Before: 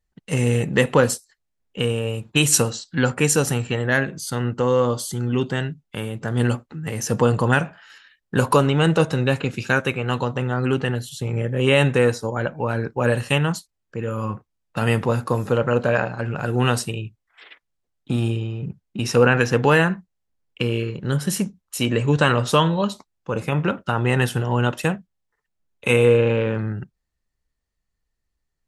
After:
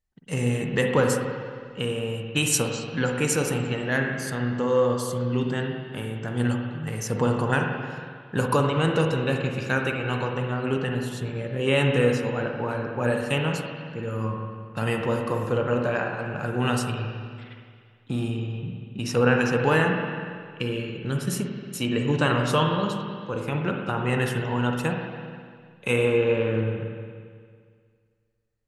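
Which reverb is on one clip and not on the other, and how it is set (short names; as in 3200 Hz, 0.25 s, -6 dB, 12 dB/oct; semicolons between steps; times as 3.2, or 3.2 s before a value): spring tank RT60 2 s, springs 45/57 ms, chirp 65 ms, DRR 2 dB; gain -6 dB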